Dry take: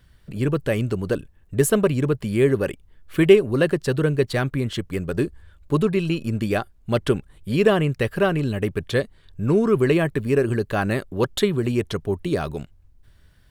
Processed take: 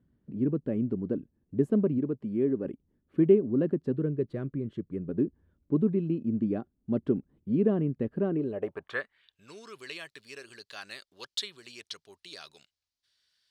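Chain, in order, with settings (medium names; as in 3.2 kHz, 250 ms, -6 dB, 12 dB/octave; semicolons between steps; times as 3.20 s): 1.98–2.65 s: bass shelf 230 Hz -7.5 dB; band-pass sweep 250 Hz -> 4.7 kHz, 8.25–9.49 s; 3.94–5.08 s: graphic EQ with 31 bands 250 Hz -9 dB, 800 Hz -9 dB, 5 kHz -3 dB, 10 kHz +3 dB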